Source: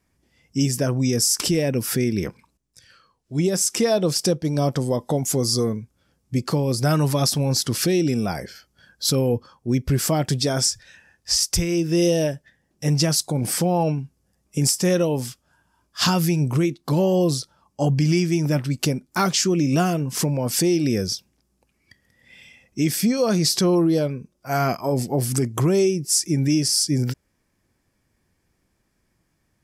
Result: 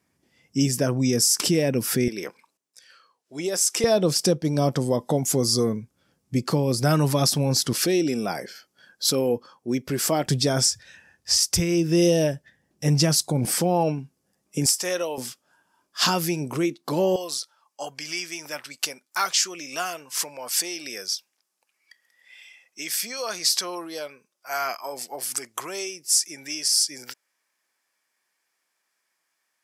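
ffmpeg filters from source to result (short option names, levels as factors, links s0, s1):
-af "asetnsamples=n=441:p=0,asendcmd='2.08 highpass f 460;3.84 highpass f 120;7.73 highpass f 260;10.26 highpass f 75;13.45 highpass f 190;14.66 highpass f 660;15.18 highpass f 280;17.16 highpass f 980',highpass=130"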